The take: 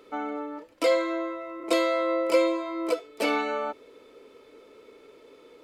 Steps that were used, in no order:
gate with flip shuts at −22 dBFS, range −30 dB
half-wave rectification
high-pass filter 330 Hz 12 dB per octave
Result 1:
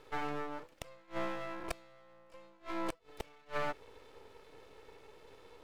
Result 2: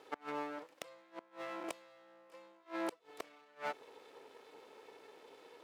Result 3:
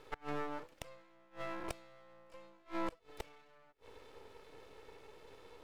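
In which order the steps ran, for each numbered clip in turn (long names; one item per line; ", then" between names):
high-pass filter, then half-wave rectification, then gate with flip
half-wave rectification, then gate with flip, then high-pass filter
gate with flip, then high-pass filter, then half-wave rectification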